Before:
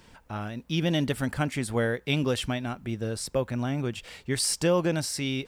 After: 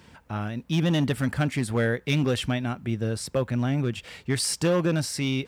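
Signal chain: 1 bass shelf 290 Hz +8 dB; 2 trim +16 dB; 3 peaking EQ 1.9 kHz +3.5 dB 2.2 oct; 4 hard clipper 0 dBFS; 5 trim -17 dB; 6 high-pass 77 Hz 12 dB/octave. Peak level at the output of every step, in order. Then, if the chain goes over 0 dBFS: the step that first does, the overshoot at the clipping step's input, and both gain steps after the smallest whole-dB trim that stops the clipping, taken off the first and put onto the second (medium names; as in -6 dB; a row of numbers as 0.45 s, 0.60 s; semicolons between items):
-9.0 dBFS, +7.0 dBFS, +7.5 dBFS, 0.0 dBFS, -17.0 dBFS, -13.5 dBFS; step 2, 7.5 dB; step 2 +8 dB, step 5 -9 dB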